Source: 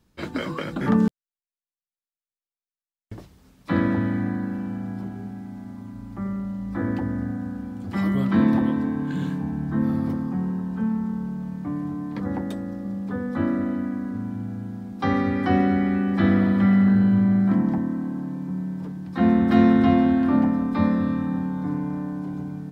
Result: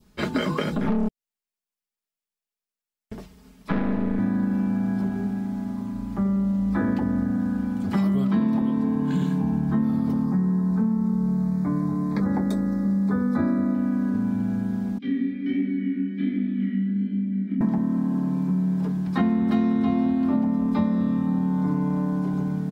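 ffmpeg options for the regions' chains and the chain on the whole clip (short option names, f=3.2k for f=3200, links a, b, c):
-filter_complex "[0:a]asettb=1/sr,asplit=3[a][b][c];[a]atrim=end=0.764[d];[b]atrim=start=0.76:end=4.19,asetpts=PTS-STARTPTS,afade=t=in:d=0.004:c=qsin,afade=t=out:st=3.426:d=0.004:c=qsin,acrossover=split=2600[e][f];[f]acompressor=threshold=-52dB:ratio=4:attack=1:release=60[g];[e][g]amix=inputs=2:normalize=0,aecho=1:1:4.4:0.3,atrim=end_sample=151263,aeval=exprs='(tanh(11.2*val(0)+0.7)-tanh(0.7))/11.2':c=same[h];[c]atrim=start=4.186[i];[d][h]acrossfade=d=0.004:c1=hsin:c2=qsin[j];[j][i]acrossfade=d=0.004:c1=qsin:c2=hsin,asettb=1/sr,asplit=3[k][l][m];[k]atrim=end=10.244[n];[l]atrim=start=10.24:end=13.75,asetpts=PTS-STARTPTS,afade=t=in:d=0.004:c=qsin,afade=t=out:st=3.506:d=0.004:c=qsin,asuperstop=centerf=2900:order=4:qfactor=2.2,asplit=2[o][p];[p]adelay=21,volume=-12dB[q];[o][q]amix=inputs=2:normalize=0,atrim=end_sample=154791[r];[m]atrim=start=13.746[s];[n][r]acrossfade=d=0.004:c1=hsin:c2=qsin[t];[t][s]acrossfade=d=0.004:c1=qsin:c2=hsin,asettb=1/sr,asplit=3[u][v][w];[u]atrim=end=14.984[x];[v]atrim=start=14.98:end=17.61,asetpts=PTS-STARTPTS,afade=t=in:d=0.004:c=qsin,afade=t=out:st=2.626:d=0.004:c=qsin,asplit=3[y][z][aa];[y]bandpass=f=270:t=q:w=8,volume=0dB[ab];[z]bandpass=f=2.29k:t=q:w=8,volume=-6dB[ac];[aa]bandpass=f=3.01k:t=q:w=8,volume=-9dB[ad];[ab][ac][ad]amix=inputs=3:normalize=0,equalizer=f=1.1k:t=o:w=0.78:g=-4.5,flanger=delay=19:depth=7.9:speed=1.3[ae];[w]atrim=start=17.606[af];[x][ae]acrossfade=d=0.004:c1=hsin:c2=qsin[ag];[ag][af]acrossfade=d=0.004:c1=qsin:c2=hsin,aecho=1:1:4.8:0.52,adynamicequalizer=threshold=0.00708:dfrequency=1700:dqfactor=1.1:tfrequency=1700:tqfactor=1.1:attack=5:release=100:ratio=0.375:range=3.5:mode=cutabove:tftype=bell,acompressor=threshold=-25dB:ratio=6,volume=5.5dB"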